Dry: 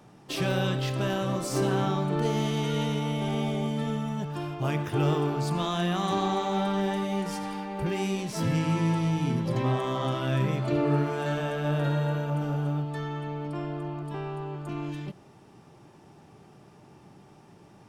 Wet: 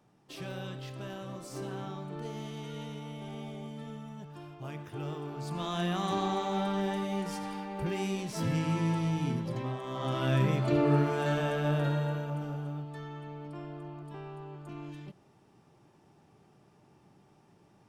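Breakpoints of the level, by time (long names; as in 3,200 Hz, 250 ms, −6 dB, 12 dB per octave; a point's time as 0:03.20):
0:05.23 −13 dB
0:05.79 −4 dB
0:09.28 −4 dB
0:09.80 −11 dB
0:10.23 −0.5 dB
0:11.56 −0.5 dB
0:12.68 −9 dB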